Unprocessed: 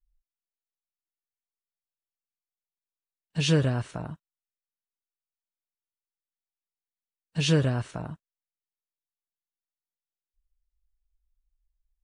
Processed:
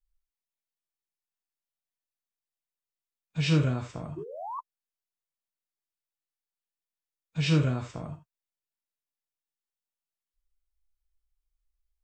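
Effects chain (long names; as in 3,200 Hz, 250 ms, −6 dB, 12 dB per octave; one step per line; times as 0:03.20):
reverb whose tail is shaped and stops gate 100 ms flat, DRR 4.5 dB
sound drawn into the spectrogram rise, 0:04.17–0:04.60, 370–1,200 Hz −28 dBFS
formants moved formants −3 semitones
level −3.5 dB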